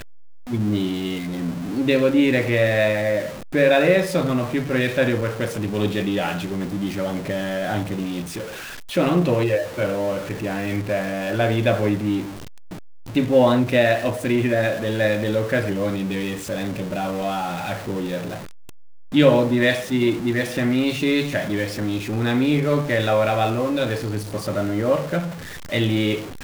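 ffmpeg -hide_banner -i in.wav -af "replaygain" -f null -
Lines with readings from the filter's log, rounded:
track_gain = +1.6 dB
track_peak = 0.493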